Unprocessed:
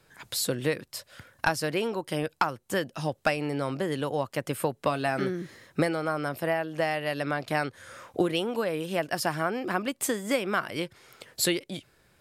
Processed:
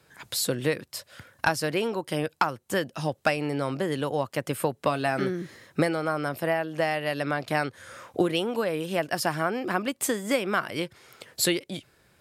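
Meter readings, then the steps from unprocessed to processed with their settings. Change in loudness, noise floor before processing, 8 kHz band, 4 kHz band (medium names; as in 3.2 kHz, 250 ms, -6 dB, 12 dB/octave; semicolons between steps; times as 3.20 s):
+1.5 dB, -65 dBFS, +1.5 dB, +1.5 dB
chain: high-pass 47 Hz; trim +1.5 dB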